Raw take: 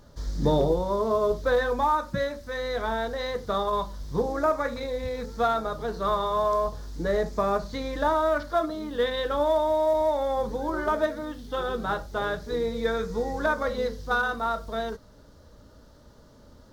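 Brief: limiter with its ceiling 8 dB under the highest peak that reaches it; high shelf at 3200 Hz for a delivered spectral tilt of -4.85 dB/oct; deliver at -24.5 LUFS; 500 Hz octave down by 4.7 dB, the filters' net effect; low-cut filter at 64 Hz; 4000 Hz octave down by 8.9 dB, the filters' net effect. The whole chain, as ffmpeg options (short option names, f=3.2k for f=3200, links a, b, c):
-af "highpass=64,equalizer=f=500:t=o:g=-5.5,highshelf=f=3.2k:g=-7.5,equalizer=f=4k:t=o:g=-5,volume=8dB,alimiter=limit=-14.5dB:level=0:latency=1"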